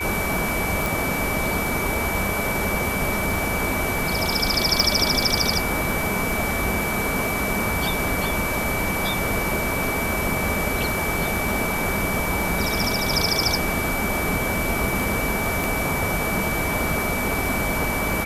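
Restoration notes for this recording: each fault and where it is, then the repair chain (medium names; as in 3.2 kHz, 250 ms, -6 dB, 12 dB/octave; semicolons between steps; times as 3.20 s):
crackle 24 per s -26 dBFS
whine 2.3 kHz -27 dBFS
0.86 s: pop
4.80 s: pop
15.64 s: pop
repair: de-click; band-stop 2.3 kHz, Q 30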